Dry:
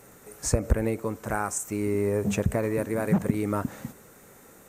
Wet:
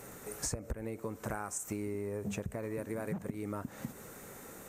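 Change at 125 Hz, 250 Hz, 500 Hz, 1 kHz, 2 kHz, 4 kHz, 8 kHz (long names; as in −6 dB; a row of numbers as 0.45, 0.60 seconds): −13.0, −12.0, −11.5, −11.0, −10.5, −6.5, −7.0 decibels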